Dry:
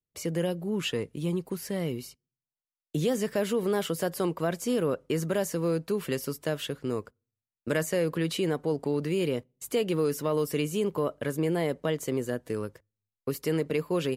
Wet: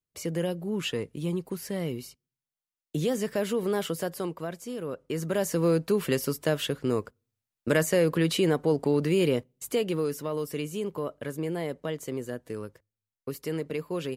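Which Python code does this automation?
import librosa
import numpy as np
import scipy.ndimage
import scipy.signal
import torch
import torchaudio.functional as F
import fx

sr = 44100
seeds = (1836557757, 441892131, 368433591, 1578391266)

y = fx.gain(x, sr, db=fx.line((3.9, -0.5), (4.74, -9.0), (5.6, 4.0), (9.33, 4.0), (10.28, -4.0)))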